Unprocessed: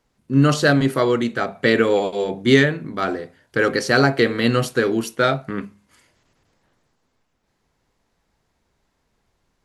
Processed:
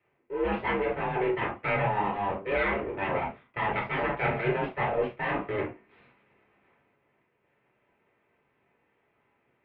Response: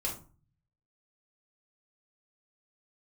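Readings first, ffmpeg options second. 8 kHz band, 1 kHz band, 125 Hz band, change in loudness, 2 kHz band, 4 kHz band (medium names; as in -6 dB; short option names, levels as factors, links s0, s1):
under -40 dB, -3.5 dB, -13.5 dB, -10.5 dB, -9.5 dB, -18.0 dB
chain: -filter_complex "[0:a]areverse,acompressor=threshold=0.0447:ratio=5,areverse,equalizer=f=250:t=o:w=1:g=10,equalizer=f=500:t=o:w=1:g=8,equalizer=f=2000:t=o:w=1:g=12,aeval=exprs='abs(val(0))':c=same[s0];[1:a]atrim=start_sample=2205,atrim=end_sample=3528[s1];[s0][s1]afir=irnorm=-1:irlink=0,highpass=f=200:t=q:w=0.5412,highpass=f=200:t=q:w=1.307,lowpass=f=2900:t=q:w=0.5176,lowpass=f=2900:t=q:w=0.7071,lowpass=f=2900:t=q:w=1.932,afreqshift=-92,volume=0.501"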